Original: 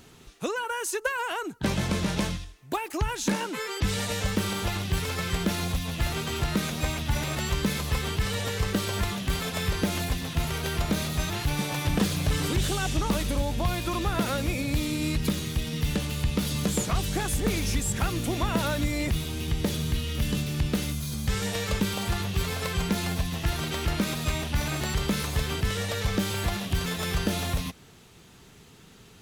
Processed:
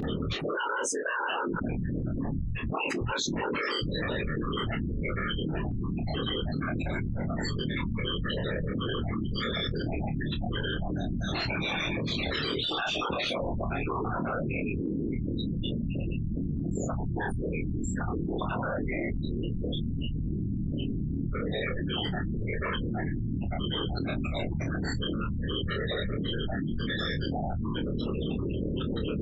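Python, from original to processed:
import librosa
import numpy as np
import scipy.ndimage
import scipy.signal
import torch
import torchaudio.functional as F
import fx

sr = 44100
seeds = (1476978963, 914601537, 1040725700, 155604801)

y = fx.highpass(x, sr, hz=fx.line((11.33, 190.0), (13.4, 780.0)), slope=6, at=(11.33, 13.4), fade=0.02)
y = fx.spec_gate(y, sr, threshold_db=-10, keep='strong')
y = fx.ladder_lowpass(y, sr, hz=5000.0, resonance_pct=30)
y = fx.tilt_eq(y, sr, slope=1.5)
y = fx.notch(y, sr, hz=890.0, q=12.0)
y = fx.whisperise(y, sr, seeds[0])
y = fx.tremolo_random(y, sr, seeds[1], hz=3.5, depth_pct=55)
y = fx.room_early_taps(y, sr, ms=(26, 44), db=(-3.0, -15.5))
y = fx.env_flatten(y, sr, amount_pct=100)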